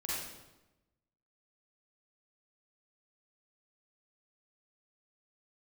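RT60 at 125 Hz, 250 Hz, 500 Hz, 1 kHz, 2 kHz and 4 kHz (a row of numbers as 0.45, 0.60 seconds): 1.3, 1.2, 1.1, 1.0, 0.85, 0.80 seconds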